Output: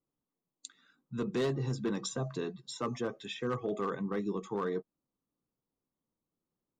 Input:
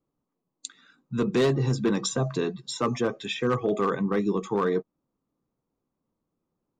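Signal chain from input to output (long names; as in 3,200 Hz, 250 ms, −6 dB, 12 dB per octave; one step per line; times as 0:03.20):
notch filter 2,400 Hz, Q 16
level −9 dB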